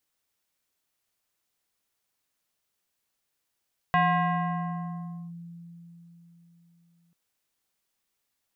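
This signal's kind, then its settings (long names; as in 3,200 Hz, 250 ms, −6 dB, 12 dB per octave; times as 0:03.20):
two-operator FM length 3.19 s, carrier 170 Hz, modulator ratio 5.26, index 1.7, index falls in 1.38 s linear, decay 4.16 s, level −18 dB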